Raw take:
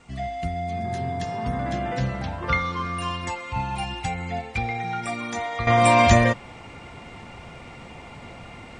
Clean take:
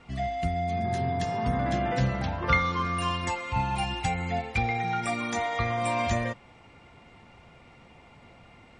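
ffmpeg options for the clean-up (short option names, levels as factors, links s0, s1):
-af "agate=range=0.0891:threshold=0.02,asetnsamples=n=441:p=0,asendcmd='5.67 volume volume -11.5dB',volume=1"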